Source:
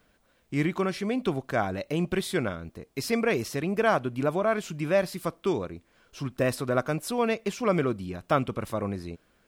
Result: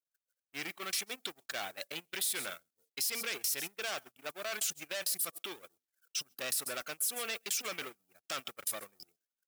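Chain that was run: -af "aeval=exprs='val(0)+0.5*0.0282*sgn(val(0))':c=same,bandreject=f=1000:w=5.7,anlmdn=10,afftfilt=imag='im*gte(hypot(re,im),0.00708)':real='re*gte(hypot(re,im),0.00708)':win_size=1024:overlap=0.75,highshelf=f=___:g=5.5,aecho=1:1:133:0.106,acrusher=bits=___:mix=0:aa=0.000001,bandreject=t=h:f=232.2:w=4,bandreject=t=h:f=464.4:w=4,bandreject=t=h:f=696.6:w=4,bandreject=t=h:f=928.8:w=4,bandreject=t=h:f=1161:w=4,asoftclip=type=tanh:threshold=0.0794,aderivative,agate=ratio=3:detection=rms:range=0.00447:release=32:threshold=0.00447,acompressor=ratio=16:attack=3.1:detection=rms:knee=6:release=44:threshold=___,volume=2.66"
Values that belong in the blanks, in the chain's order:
4400, 8, 0.0141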